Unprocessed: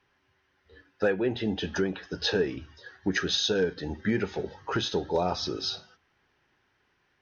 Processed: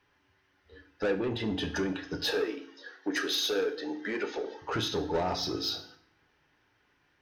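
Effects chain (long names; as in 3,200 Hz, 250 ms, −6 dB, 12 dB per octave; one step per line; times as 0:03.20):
0:02.21–0:04.62: high-pass filter 310 Hz 24 dB per octave
soft clipping −25 dBFS, distortion −12 dB
feedback delay network reverb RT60 0.59 s, low-frequency decay 1.3×, high-frequency decay 0.9×, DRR 7 dB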